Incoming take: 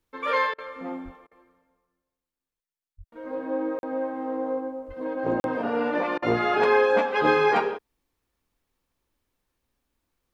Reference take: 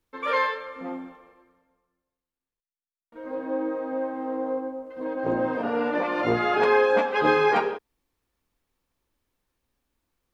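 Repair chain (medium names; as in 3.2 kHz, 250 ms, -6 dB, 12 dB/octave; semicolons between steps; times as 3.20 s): 1.04–1.16 s: high-pass 140 Hz 24 dB/octave; 2.97–3.09 s: high-pass 140 Hz 24 dB/octave; 4.87–4.99 s: high-pass 140 Hz 24 dB/octave; interpolate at 3.79/5.40 s, 41 ms; interpolate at 0.54/1.27/6.18 s, 42 ms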